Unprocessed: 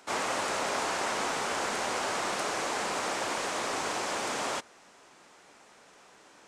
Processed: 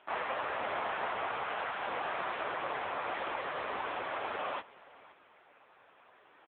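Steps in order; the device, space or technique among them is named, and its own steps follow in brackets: 0.88–1.79 s: high-pass 140 Hz -> 540 Hz 12 dB/octave; satellite phone (band-pass 360–3300 Hz; delay 514 ms -20.5 dB; AMR-NB 6.7 kbps 8 kHz)

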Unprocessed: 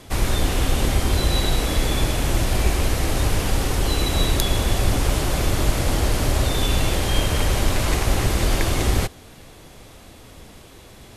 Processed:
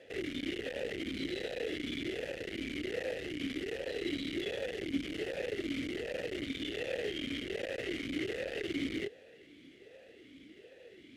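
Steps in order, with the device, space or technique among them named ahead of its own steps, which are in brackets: talk box (valve stage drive 26 dB, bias 0.8; talking filter e-i 1.3 Hz); trim +7 dB

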